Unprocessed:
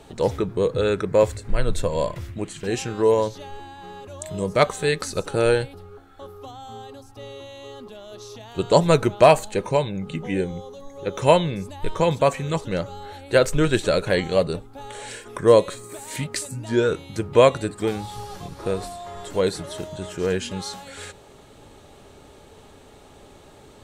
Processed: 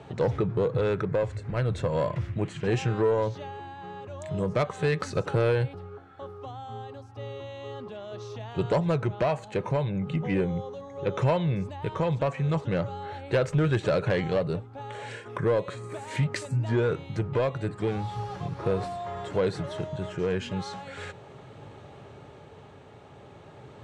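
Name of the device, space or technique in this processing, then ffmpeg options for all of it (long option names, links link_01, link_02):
AM radio: -af "highpass=100,lowpass=3800,equalizer=frequency=125:width_type=o:width=1:gain=9,equalizer=frequency=250:width_type=o:width=1:gain=-5,equalizer=frequency=4000:width_type=o:width=1:gain=-5,acompressor=threshold=-20dB:ratio=4,asoftclip=type=tanh:threshold=-18dB,tremolo=f=0.37:d=0.26,volume=2dB"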